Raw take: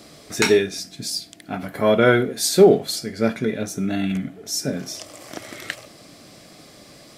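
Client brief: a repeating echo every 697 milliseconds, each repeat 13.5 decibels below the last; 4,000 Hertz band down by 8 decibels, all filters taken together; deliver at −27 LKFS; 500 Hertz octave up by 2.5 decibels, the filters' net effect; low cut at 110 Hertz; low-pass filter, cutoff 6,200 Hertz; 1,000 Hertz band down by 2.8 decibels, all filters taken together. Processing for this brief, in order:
high-pass filter 110 Hz
low-pass filter 6,200 Hz
parametric band 500 Hz +4.5 dB
parametric band 1,000 Hz −6 dB
parametric band 4,000 Hz −9 dB
repeating echo 697 ms, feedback 21%, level −13.5 dB
level −8 dB

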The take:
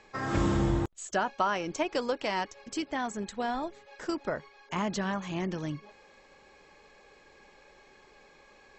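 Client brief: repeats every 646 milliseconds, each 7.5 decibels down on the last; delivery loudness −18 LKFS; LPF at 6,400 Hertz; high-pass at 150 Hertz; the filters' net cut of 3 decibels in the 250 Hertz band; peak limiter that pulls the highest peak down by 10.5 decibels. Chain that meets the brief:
high-pass filter 150 Hz
low-pass filter 6,400 Hz
parametric band 250 Hz −3.5 dB
brickwall limiter −24.5 dBFS
repeating echo 646 ms, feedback 42%, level −7.5 dB
level +17.5 dB

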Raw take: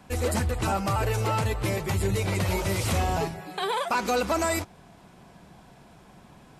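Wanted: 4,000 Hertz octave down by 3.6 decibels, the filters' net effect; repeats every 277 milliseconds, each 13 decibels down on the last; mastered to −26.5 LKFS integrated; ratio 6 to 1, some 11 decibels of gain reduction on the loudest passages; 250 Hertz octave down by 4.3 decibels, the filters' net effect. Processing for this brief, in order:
parametric band 250 Hz −6.5 dB
parametric band 4,000 Hz −4.5 dB
downward compressor 6 to 1, threshold −35 dBFS
repeating echo 277 ms, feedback 22%, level −13 dB
level +11.5 dB

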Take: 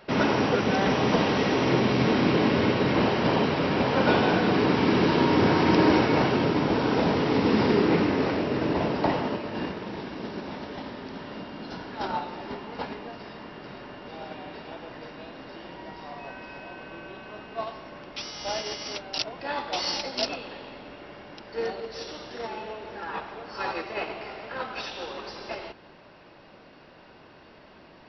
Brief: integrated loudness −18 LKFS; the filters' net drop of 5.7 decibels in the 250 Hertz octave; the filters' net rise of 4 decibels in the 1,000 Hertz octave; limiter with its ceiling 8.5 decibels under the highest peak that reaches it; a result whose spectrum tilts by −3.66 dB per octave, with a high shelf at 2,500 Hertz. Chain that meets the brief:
parametric band 250 Hz −8 dB
parametric band 1,000 Hz +6 dB
high-shelf EQ 2,500 Hz −4.5 dB
level +11 dB
brickwall limiter −6 dBFS

